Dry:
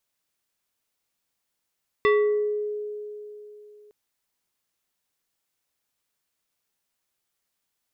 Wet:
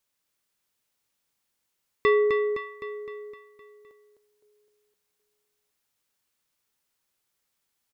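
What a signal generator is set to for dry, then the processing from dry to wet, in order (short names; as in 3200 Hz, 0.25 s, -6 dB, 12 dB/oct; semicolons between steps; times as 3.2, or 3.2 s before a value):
FM tone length 1.86 s, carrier 419 Hz, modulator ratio 3.7, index 1, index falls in 0.78 s exponential, decay 3.24 s, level -15 dB
notch 680 Hz, Q 12; feedback echo 0.257 s, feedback 56%, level -6 dB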